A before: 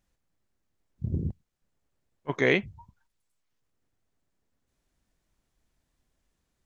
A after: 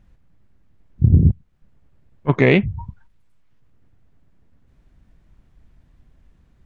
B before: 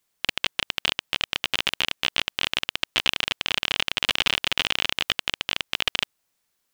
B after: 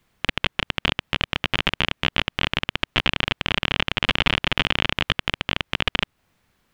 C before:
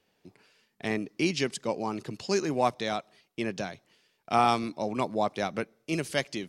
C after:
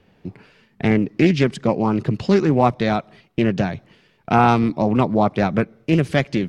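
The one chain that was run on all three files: tone controls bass +11 dB, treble -14 dB; in parallel at +3 dB: compression, threshold -32 dBFS; on the sum: loudness maximiser +6.5 dB; loudspeaker Doppler distortion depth 0.22 ms; trim -1 dB

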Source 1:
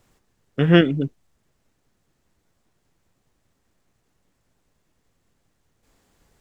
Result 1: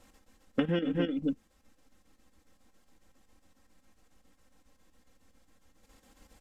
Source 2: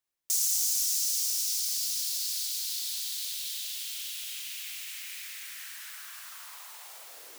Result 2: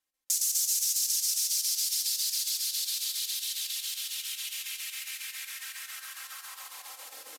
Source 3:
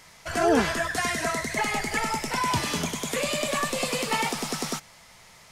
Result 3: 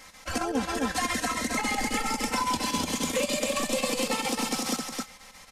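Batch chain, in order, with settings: square tremolo 7.3 Hz, depth 60%, duty 75%; resampled via 32 kHz; on a send: delay 263 ms -5.5 dB; on the sum: dynamic bell 1.7 kHz, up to -5 dB, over -39 dBFS, Q 1.4; compression 16:1, threshold -26 dBFS; comb 3.8 ms, depth 95%

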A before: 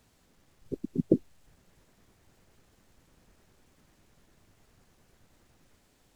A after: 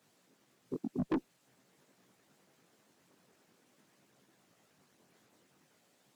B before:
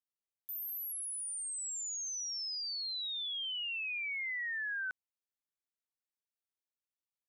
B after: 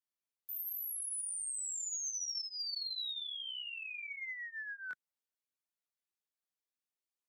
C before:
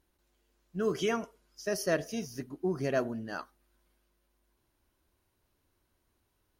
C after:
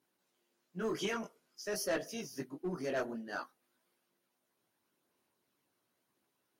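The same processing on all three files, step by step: high-pass 150 Hz 24 dB/octave; chorus voices 2, 0.48 Hz, delay 19 ms, depth 4.4 ms; in parallel at -6 dB: one-sided clip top -32.5 dBFS; on the sum: harmonic-percussive split percussive +7 dB; saturation -20 dBFS; trim -7 dB

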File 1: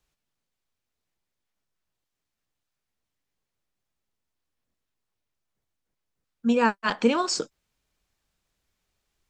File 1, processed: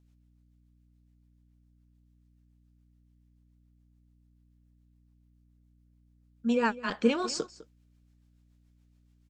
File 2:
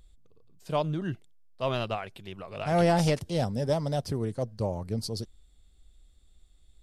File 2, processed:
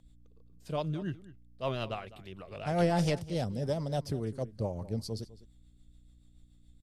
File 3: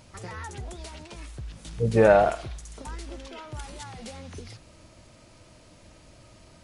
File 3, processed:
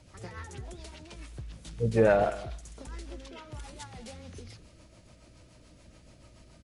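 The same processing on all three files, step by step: rotary cabinet horn 7 Hz; echo from a far wall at 35 m, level -17 dB; hum 60 Hz, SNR 26 dB; trim -2.5 dB

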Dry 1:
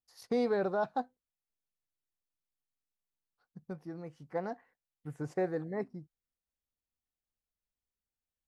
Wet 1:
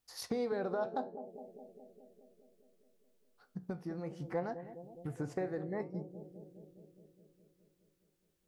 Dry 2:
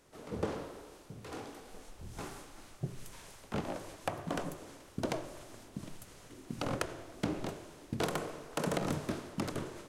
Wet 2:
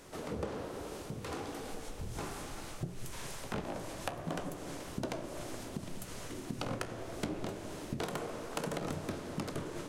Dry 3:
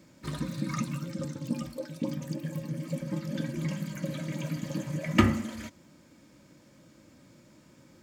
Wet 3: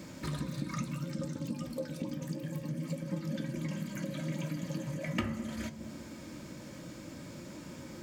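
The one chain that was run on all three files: compression 3:1, threshold -50 dBFS; flange 0.66 Hz, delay 10 ms, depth 8 ms, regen +72%; bucket-brigade echo 207 ms, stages 1024, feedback 70%, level -11 dB; trim +15 dB

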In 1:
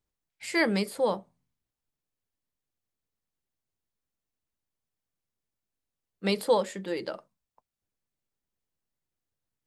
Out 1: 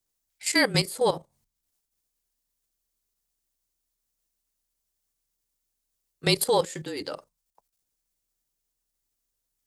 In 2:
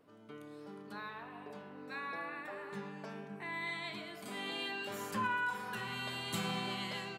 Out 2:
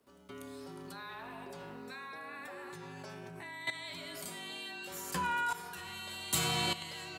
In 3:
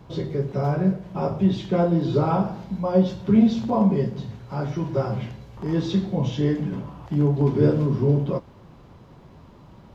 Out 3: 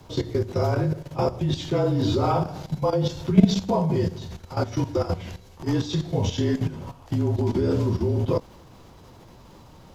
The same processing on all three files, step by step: level held to a coarse grid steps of 13 dB; frequency shift -34 Hz; tone controls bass -3 dB, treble +11 dB; trim +6 dB

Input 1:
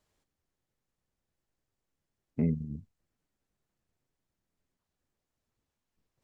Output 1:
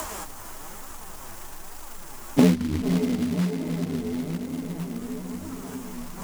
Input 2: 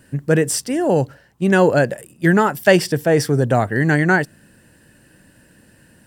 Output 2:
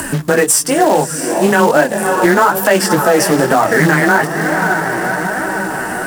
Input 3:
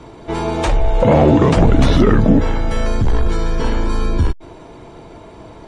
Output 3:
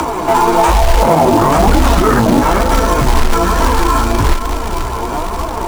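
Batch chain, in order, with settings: on a send: echo that smears into a reverb 558 ms, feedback 49%, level -13 dB; on the sum: chorus 0.36 Hz, delay 16 ms, depth 5.5 ms; frequency shift +13 Hz; in parallel at +3 dB: compression 10:1, threshold -22 dBFS; on the sum: graphic EQ 125/250/500/1000/2000/4000 Hz -11/-4/-8/+4/-6/-12 dB; flange 1.1 Hz, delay 2.9 ms, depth 6.4 ms, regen +29%; short-mantissa float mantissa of 2-bit; upward compressor, threshold -25 dBFS; bass shelf 190 Hz -7 dB; loudness maximiser +17.5 dB; loudspeaker Doppler distortion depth 0.16 ms

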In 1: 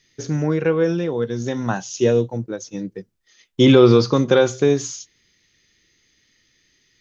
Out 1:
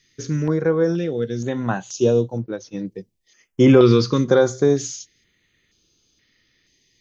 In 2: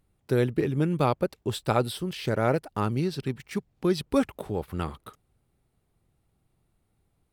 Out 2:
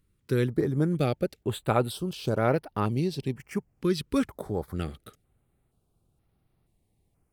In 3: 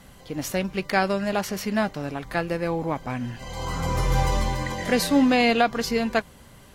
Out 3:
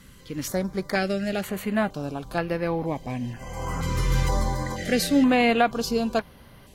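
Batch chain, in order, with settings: band-stop 890 Hz, Q 29; step-sequenced notch 2.1 Hz 710–7500 Hz

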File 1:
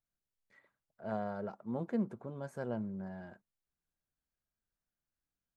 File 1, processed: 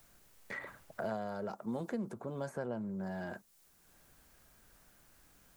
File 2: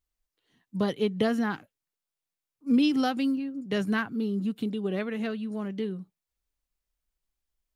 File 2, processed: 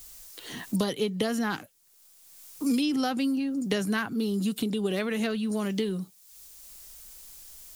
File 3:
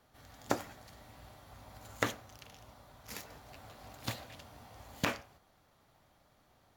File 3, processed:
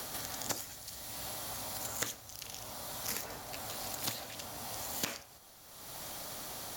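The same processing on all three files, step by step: tone controls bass -3 dB, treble +13 dB; transient shaper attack +1 dB, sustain +5 dB; three bands compressed up and down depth 100%

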